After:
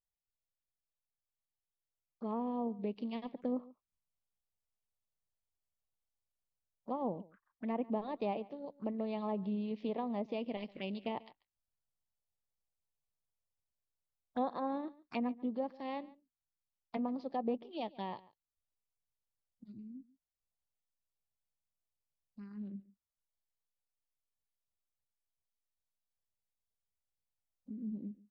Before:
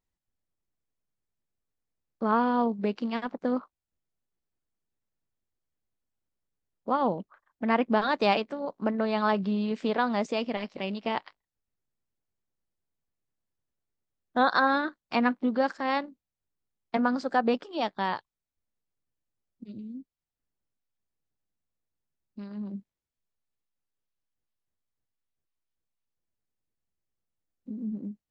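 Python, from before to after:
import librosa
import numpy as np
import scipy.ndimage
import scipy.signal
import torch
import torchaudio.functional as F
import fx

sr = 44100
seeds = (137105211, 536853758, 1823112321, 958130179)

p1 = fx.rider(x, sr, range_db=3, speed_s=2.0)
p2 = fx.env_lowpass_down(p1, sr, base_hz=1400.0, full_db=-21.5)
p3 = fx.env_phaser(p2, sr, low_hz=300.0, high_hz=1500.0, full_db=-28.5)
p4 = p3 + fx.echo_single(p3, sr, ms=141, db=-21.0, dry=0)
y = p4 * 10.0 ** (-8.5 / 20.0)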